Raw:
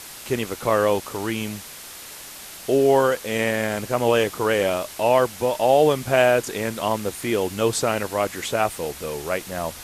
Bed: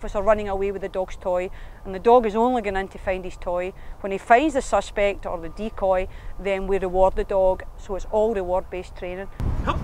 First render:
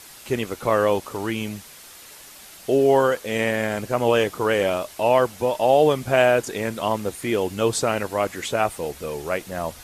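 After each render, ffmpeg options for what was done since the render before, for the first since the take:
-af "afftdn=nr=6:nf=-39"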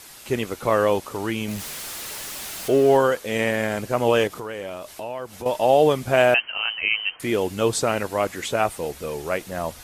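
-filter_complex "[0:a]asettb=1/sr,asplit=3[s0][s1][s2];[s0]atrim=end=1.484[s3];[s1]atrim=start=1.48:end=2.97,asetpts=PTS-STARTPTS,afade=t=in:d=0.004:c=qsin,afade=t=out:st=1.486:d=0.004:c=qsin,aeval=exprs='val(0)+0.5*0.0299*sgn(val(0))':c=same[s4];[s2]atrim=start=2.966[s5];[s3][s4]acrossfade=d=0.004:c1=hsin:c2=qsin[s6];[s6][s5]acrossfade=d=0.004:c1=qsin:c2=hsin,asettb=1/sr,asplit=3[s7][s8][s9];[s7]atrim=end=4.274[s10];[s8]atrim=start=4.27:end=5.46,asetpts=PTS-STARTPTS,afade=t=in:d=0.004:c=qsin,afade=t=out:st=1.186:d=0.004:c=qsin,acompressor=threshold=0.0251:ratio=3:attack=3.2:release=140:knee=1:detection=peak[s11];[s9]atrim=start=5.456[s12];[s10][s11]acrossfade=d=0.004:c1=hsin:c2=qsin[s13];[s13][s12]acrossfade=d=0.004:c1=qsin:c2=hsin,asettb=1/sr,asplit=3[s14][s15][s16];[s14]atrim=end=6.344[s17];[s15]atrim=start=6.34:end=7.2,asetpts=PTS-STARTPTS,afade=t=in:d=0.004:c=qsin,afade=t=out:st=0.856:d=0.004:c=qsin,lowpass=f=2700:t=q:w=0.5098,lowpass=f=2700:t=q:w=0.6013,lowpass=f=2700:t=q:w=0.9,lowpass=f=2700:t=q:w=2.563,afreqshift=-3200[s18];[s16]atrim=start=7.196[s19];[s17][s18]acrossfade=d=0.004:c1=hsin:c2=qsin[s20];[s20][s19]acrossfade=d=0.004:c1=qsin:c2=hsin"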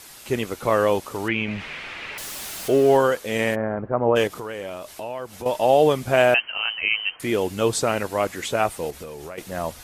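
-filter_complex "[0:a]asettb=1/sr,asplit=3[s0][s1][s2];[s0]atrim=end=1.284[s3];[s1]atrim=start=1.28:end=2.18,asetpts=PTS-STARTPTS,afade=t=in:d=0.004:c=qsin,afade=t=out:st=0.896:d=0.004:c=qsin,lowpass=f=2400:t=q:w=2.8[s4];[s2]atrim=start=2.176[s5];[s3][s4]acrossfade=d=0.004:c1=hsin:c2=qsin[s6];[s6][s5]acrossfade=d=0.004:c1=qsin:c2=hsin,asplit=3[s7][s8][s9];[s7]afade=t=out:st=3.54:d=0.02[s10];[s8]lowpass=f=1400:w=0.5412,lowpass=f=1400:w=1.3066,afade=t=in:st=3.54:d=0.02,afade=t=out:st=4.15:d=0.02[s11];[s9]afade=t=in:st=4.15:d=0.02[s12];[s10][s11][s12]amix=inputs=3:normalize=0,asettb=1/sr,asplit=3[s13][s14][s15];[s13]atrim=end=8.904[s16];[s14]atrim=start=8.9:end=9.38,asetpts=PTS-STARTPTS,afade=t=in:d=0.004:c=qsin,afade=t=out:st=0.476:d=0.004:c=qsin,acompressor=threshold=0.0282:ratio=16:attack=3.2:release=140:knee=1:detection=peak[s17];[s15]atrim=start=9.376[s18];[s16][s17]acrossfade=d=0.004:c1=hsin:c2=qsin[s19];[s19][s18]acrossfade=d=0.004:c1=qsin:c2=hsin"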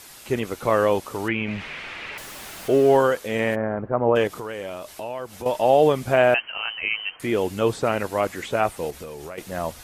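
-filter_complex "[0:a]acrossover=split=2800[s0][s1];[s1]acompressor=threshold=0.0112:ratio=4:attack=1:release=60[s2];[s0][s2]amix=inputs=2:normalize=0"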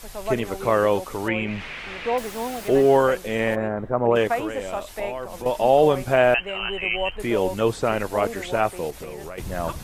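-filter_complex "[1:a]volume=0.335[s0];[0:a][s0]amix=inputs=2:normalize=0"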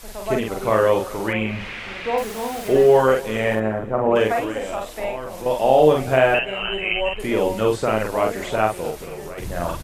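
-filter_complex "[0:a]asplit=2[s0][s1];[s1]adelay=46,volume=0.75[s2];[s0][s2]amix=inputs=2:normalize=0,aecho=1:1:249|498|747|996:0.0891|0.0455|0.0232|0.0118"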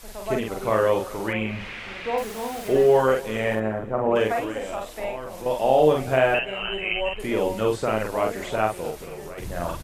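-af "volume=0.668"

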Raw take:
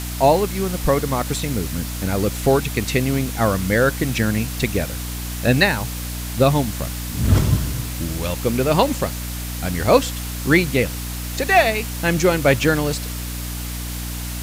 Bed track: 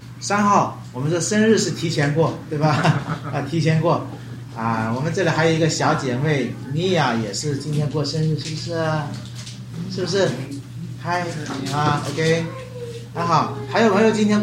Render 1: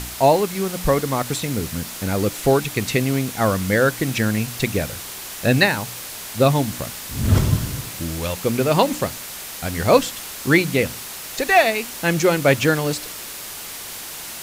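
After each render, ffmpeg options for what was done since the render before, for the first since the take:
-af "bandreject=f=60:t=h:w=4,bandreject=f=120:t=h:w=4,bandreject=f=180:t=h:w=4,bandreject=f=240:t=h:w=4,bandreject=f=300:t=h:w=4"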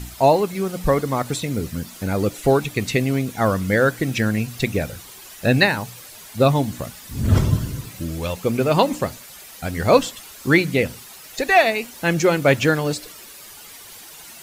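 -af "afftdn=nr=11:nf=-34"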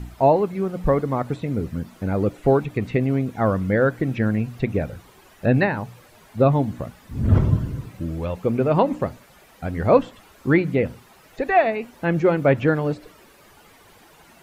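-filter_complex "[0:a]highshelf=f=2000:g=-12,acrossover=split=3100[s0][s1];[s1]acompressor=threshold=0.00178:ratio=4:attack=1:release=60[s2];[s0][s2]amix=inputs=2:normalize=0"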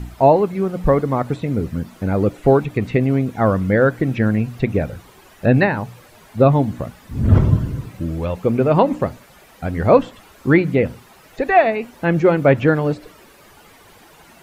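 -af "volume=1.58,alimiter=limit=0.891:level=0:latency=1"

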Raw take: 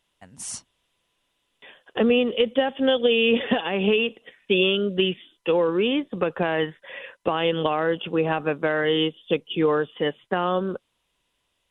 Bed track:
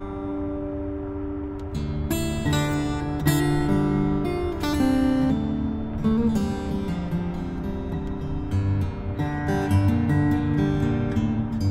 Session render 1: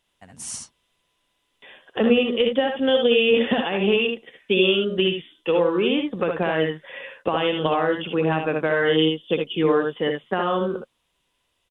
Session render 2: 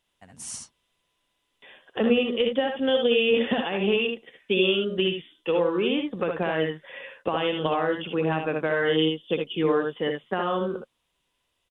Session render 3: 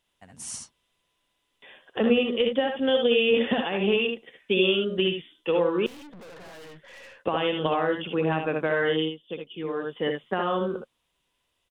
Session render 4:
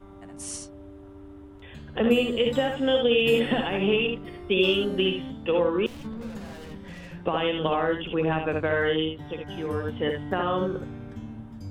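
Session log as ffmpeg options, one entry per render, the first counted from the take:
-af "aecho=1:1:63|76:0.422|0.473"
-af "volume=0.668"
-filter_complex "[0:a]asettb=1/sr,asplit=3[s0][s1][s2];[s0]atrim=end=5.864[s3];[s1]atrim=start=5.86:end=7.2,asetpts=PTS-STARTPTS,afade=t=in:d=0.004:c=qsin,afade=t=out:st=1.336:d=0.004:c=qsin,aeval=exprs='(tanh(158*val(0)+0.35)-tanh(0.35))/158':c=same[s4];[s2]atrim=start=7.196[s5];[s3][s4]acrossfade=d=0.004:c1=hsin:c2=qsin[s6];[s6][s5]acrossfade=d=0.004:c1=qsin:c2=hsin,asplit=3[s7][s8][s9];[s7]atrim=end=9.15,asetpts=PTS-STARTPTS,afade=t=out:st=8.83:d=0.32:silence=0.354813[s10];[s8]atrim=start=9.15:end=9.73,asetpts=PTS-STARTPTS,volume=0.355[s11];[s9]atrim=start=9.73,asetpts=PTS-STARTPTS,afade=t=in:d=0.32:silence=0.354813[s12];[s10][s11][s12]concat=n=3:v=0:a=1"
-filter_complex "[1:a]volume=0.178[s0];[0:a][s0]amix=inputs=2:normalize=0"

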